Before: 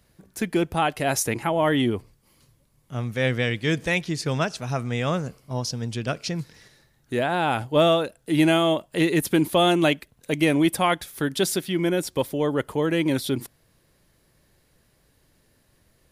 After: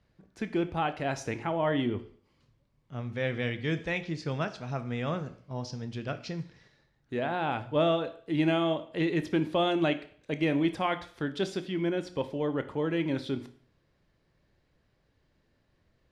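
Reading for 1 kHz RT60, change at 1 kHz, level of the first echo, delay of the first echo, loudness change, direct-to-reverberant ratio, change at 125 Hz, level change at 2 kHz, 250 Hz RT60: 0.50 s, -7.5 dB, no echo, no echo, -7.5 dB, 10.0 dB, -7.0 dB, -8.0 dB, 0.55 s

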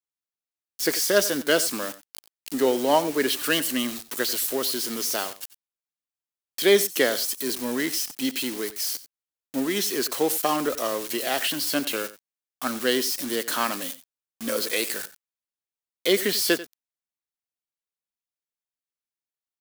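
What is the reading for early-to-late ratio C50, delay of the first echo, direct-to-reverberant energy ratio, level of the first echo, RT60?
no reverb, 91 ms, no reverb, -16.5 dB, no reverb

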